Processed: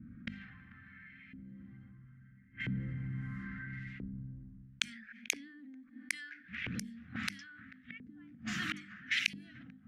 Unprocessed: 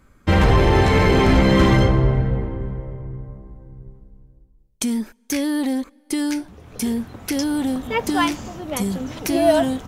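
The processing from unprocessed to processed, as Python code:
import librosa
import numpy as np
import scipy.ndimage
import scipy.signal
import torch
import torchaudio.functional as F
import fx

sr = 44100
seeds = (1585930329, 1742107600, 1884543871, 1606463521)

p1 = fx.highpass(x, sr, hz=87.0, slope=6)
p2 = fx.gate_flip(p1, sr, shuts_db=-20.0, range_db=-41)
p3 = scipy.signal.sosfilt(scipy.signal.ellip(3, 1.0, 40, [220.0, 1700.0], 'bandstop', fs=sr, output='sos'), p2)
p4 = fx.tilt_shelf(p3, sr, db=-4.5, hz=1400.0)
p5 = fx.hum_notches(p4, sr, base_hz=50, count=9)
p6 = p5 + fx.echo_single(p5, sr, ms=440, db=-22.5, dry=0)
p7 = fx.env_lowpass(p6, sr, base_hz=370.0, full_db=-40.5)
p8 = fx.dynamic_eq(p7, sr, hz=330.0, q=0.77, threshold_db=-59.0, ratio=4.0, max_db=5)
p9 = fx.rider(p8, sr, range_db=5, speed_s=0.5)
p10 = fx.filter_lfo_bandpass(p9, sr, shape='saw_up', hz=0.75, low_hz=400.0, high_hz=2600.0, q=2.5)
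p11 = fx.env_flatten(p10, sr, amount_pct=50)
y = F.gain(torch.from_numpy(p11), 14.5).numpy()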